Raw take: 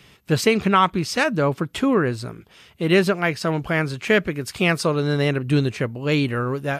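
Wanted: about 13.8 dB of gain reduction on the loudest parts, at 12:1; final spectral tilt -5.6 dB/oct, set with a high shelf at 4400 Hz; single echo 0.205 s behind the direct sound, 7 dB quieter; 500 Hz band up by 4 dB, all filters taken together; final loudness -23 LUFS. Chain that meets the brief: bell 500 Hz +5 dB; high shelf 4400 Hz -9 dB; compressor 12:1, threshold -24 dBFS; echo 0.205 s -7 dB; gain +5.5 dB

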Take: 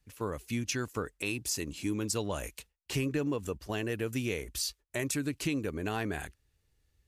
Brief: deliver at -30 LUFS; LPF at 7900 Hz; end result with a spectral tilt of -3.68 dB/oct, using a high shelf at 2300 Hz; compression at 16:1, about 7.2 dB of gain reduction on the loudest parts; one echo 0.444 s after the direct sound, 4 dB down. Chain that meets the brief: LPF 7900 Hz; high shelf 2300 Hz +4.5 dB; compressor 16:1, threshold -34 dBFS; echo 0.444 s -4 dB; gain +8 dB

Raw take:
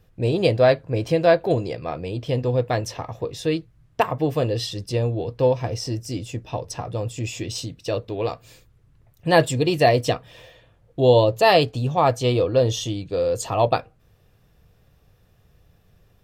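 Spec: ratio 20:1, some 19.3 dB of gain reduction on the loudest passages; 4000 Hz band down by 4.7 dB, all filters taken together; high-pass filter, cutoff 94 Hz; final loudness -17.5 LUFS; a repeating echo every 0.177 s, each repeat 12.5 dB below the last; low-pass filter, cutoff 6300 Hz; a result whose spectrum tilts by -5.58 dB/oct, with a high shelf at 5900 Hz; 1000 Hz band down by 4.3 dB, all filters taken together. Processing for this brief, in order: HPF 94 Hz; LPF 6300 Hz; bell 1000 Hz -6.5 dB; bell 4000 Hz -6.5 dB; high shelf 5900 Hz +4 dB; compressor 20:1, threshold -32 dBFS; feedback echo 0.177 s, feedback 24%, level -12.5 dB; gain +20 dB

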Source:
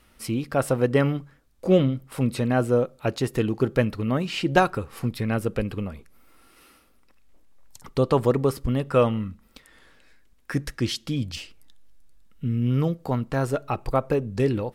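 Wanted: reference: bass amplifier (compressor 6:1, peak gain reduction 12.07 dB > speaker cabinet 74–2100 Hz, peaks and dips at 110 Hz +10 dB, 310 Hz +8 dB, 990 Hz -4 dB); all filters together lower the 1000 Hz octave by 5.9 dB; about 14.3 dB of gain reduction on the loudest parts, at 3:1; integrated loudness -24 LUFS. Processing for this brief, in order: bell 1000 Hz -7.5 dB; compressor 3:1, threshold -36 dBFS; compressor 6:1, threshold -41 dBFS; speaker cabinet 74–2100 Hz, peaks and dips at 110 Hz +10 dB, 310 Hz +8 dB, 990 Hz -4 dB; gain +19 dB

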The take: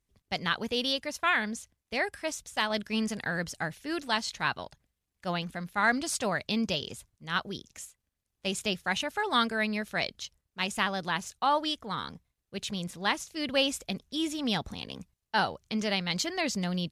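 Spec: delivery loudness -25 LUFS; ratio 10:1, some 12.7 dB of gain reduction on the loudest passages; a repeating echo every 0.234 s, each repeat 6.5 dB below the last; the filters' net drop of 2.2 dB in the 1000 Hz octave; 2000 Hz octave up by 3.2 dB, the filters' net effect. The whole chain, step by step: bell 1000 Hz -4.5 dB; bell 2000 Hz +5.5 dB; compressor 10:1, threshold -32 dBFS; feedback echo 0.234 s, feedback 47%, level -6.5 dB; gain +11 dB

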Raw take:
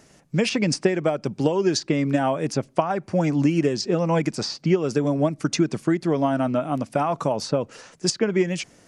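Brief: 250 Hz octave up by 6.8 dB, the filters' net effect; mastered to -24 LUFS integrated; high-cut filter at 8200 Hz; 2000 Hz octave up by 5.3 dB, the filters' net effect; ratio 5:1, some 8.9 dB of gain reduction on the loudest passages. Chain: LPF 8200 Hz; bell 250 Hz +9 dB; bell 2000 Hz +6.5 dB; compressor 5:1, threshold -19 dBFS; gain +0.5 dB

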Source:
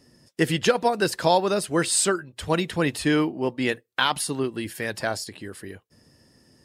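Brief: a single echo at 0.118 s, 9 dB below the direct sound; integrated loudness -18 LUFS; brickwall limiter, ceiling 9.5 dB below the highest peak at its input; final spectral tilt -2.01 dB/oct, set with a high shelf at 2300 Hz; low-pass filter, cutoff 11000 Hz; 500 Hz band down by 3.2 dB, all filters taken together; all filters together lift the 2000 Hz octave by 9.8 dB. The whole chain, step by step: LPF 11000 Hz; bell 500 Hz -5 dB; bell 2000 Hz +8.5 dB; high shelf 2300 Hz +9 dB; limiter -8.5 dBFS; echo 0.118 s -9 dB; gain +3 dB

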